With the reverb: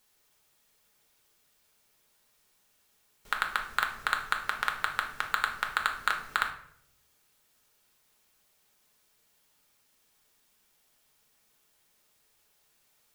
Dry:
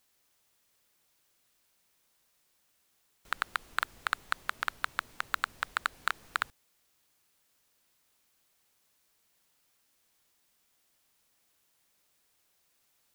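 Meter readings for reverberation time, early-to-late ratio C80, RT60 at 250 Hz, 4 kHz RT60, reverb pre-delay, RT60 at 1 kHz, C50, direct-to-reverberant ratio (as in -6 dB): 0.65 s, 13.0 dB, 0.90 s, 0.40 s, 5 ms, 0.55 s, 9.0 dB, 2.0 dB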